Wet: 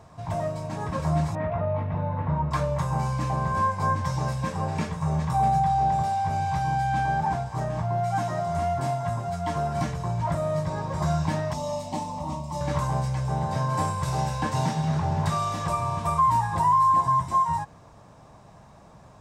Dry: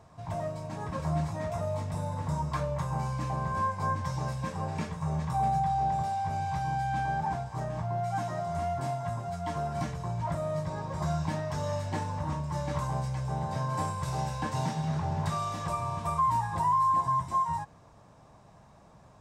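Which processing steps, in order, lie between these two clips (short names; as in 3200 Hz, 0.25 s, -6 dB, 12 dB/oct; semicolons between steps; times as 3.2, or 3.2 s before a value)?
1.35–2.51 LPF 2600 Hz 24 dB/oct; 11.53–12.61 fixed phaser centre 420 Hz, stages 6; gain +5.5 dB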